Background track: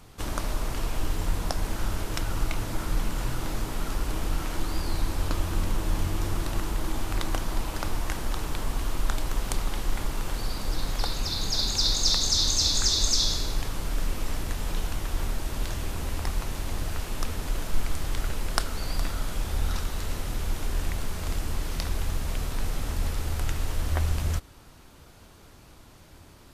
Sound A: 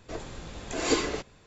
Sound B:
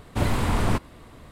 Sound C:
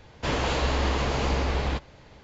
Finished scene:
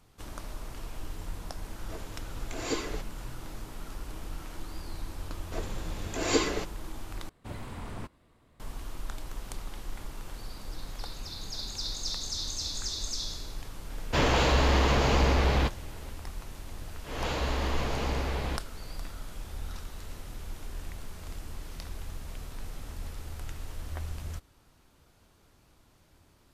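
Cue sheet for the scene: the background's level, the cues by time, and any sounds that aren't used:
background track −11 dB
0:01.80: mix in A −7 dB
0:05.43: mix in A −0.5 dB
0:07.29: overwrite with B −17 dB
0:13.90: mix in C −1 dB + leveller curve on the samples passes 1
0:16.79: mix in C −5.5 dB + volume swells 241 ms

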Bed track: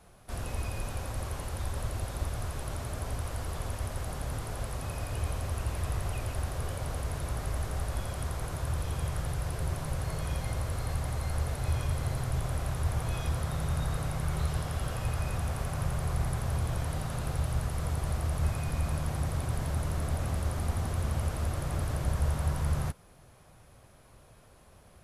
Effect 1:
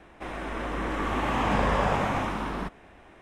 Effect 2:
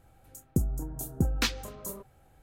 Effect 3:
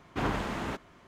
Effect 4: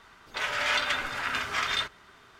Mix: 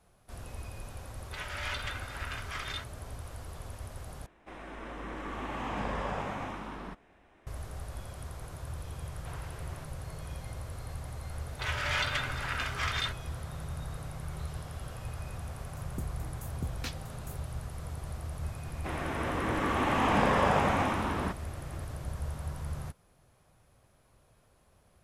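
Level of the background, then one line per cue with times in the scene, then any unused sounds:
bed track −8 dB
0:00.97: mix in 4 −10.5 dB
0:04.26: overwrite with 1 −10 dB
0:09.09: mix in 3 −15 dB + high-pass filter 520 Hz
0:11.25: mix in 4 −4.5 dB
0:15.42: mix in 2 −12 dB
0:18.64: mix in 1 −0.5 dB + high-pass filter 100 Hz

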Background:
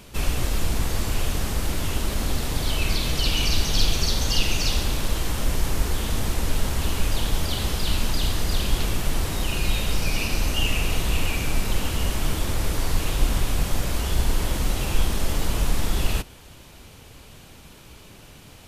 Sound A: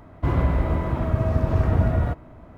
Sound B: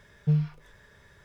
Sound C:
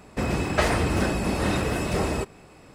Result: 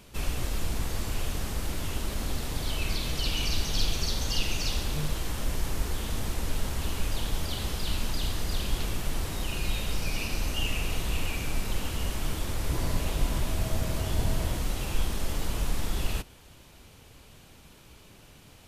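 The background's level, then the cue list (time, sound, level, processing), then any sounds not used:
background −6.5 dB
0:04.68: mix in B −3.5 dB + high-pass filter 240 Hz
0:12.46: mix in A −12 dB + Butterworth band-reject 1,400 Hz, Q 2.2
not used: C

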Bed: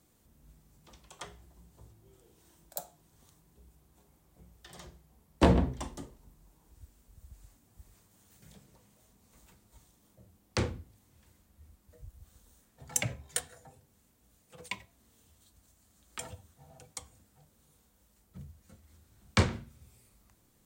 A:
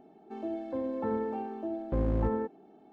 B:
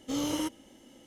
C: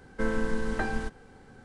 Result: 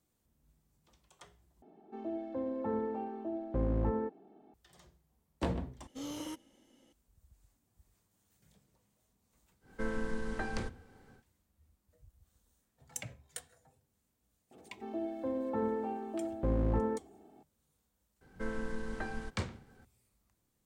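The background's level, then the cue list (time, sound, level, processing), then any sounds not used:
bed −11.5 dB
0:01.62: overwrite with A −3 dB + high-shelf EQ 2,800 Hz −6 dB
0:05.87: overwrite with B −10.5 dB
0:09.60: mix in C −7.5 dB, fades 0.10 s
0:14.51: mix in A −2 dB
0:18.21: mix in C −9.5 dB

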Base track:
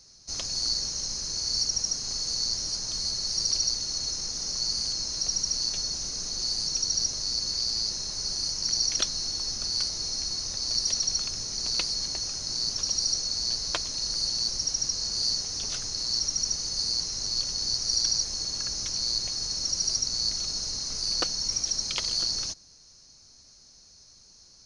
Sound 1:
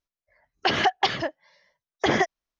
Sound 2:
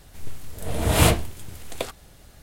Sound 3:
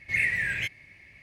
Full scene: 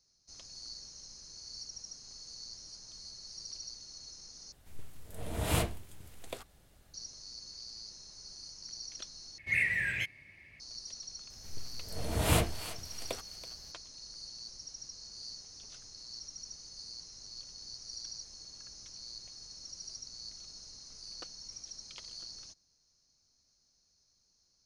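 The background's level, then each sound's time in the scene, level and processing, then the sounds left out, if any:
base track −18.5 dB
0:04.52: overwrite with 2 −13 dB
0:09.38: overwrite with 3 −4 dB
0:11.30: mix in 2 −10 dB + feedback echo with a high-pass in the loop 329 ms, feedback 33%, high-pass 840 Hz, level −12.5 dB
not used: 1

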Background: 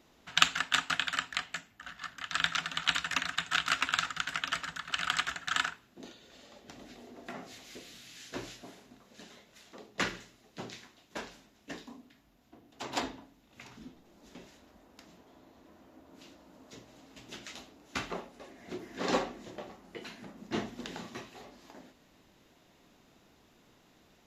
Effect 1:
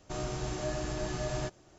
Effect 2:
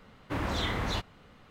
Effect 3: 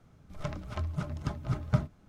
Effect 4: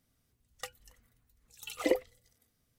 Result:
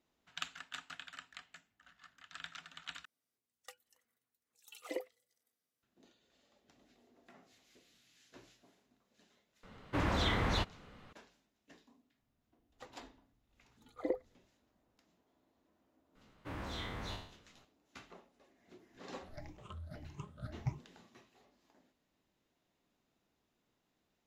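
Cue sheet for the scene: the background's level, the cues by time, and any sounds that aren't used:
background −18 dB
0:03.05: overwrite with 4 −11.5 dB + high-pass filter 310 Hz
0:09.63: mix in 2 −1 dB + high-shelf EQ 11,000 Hz −10 dB
0:12.19: mix in 4 −7 dB + moving average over 16 samples
0:16.15: mix in 2 −13.5 dB + peak hold with a decay on every bin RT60 0.59 s
0:18.93: mix in 3 −17 dB + rippled gain that drifts along the octave scale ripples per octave 0.72, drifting +1.7 Hz, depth 22 dB
not used: 1

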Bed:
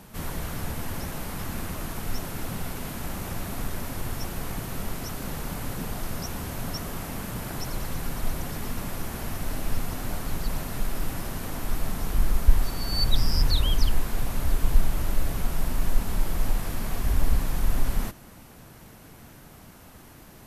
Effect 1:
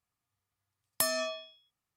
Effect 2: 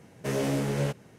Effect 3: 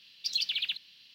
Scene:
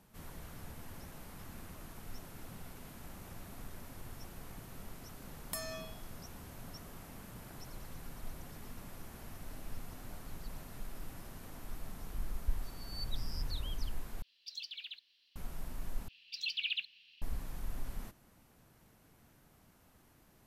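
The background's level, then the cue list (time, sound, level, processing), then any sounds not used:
bed −16.5 dB
0:04.53: mix in 1 −11.5 dB
0:14.22: overwrite with 3 −14.5 dB + high-pass filter 280 Hz 24 dB per octave
0:16.08: overwrite with 3 −13 dB + parametric band 2,600 Hz +13.5 dB 0.63 octaves
not used: 2

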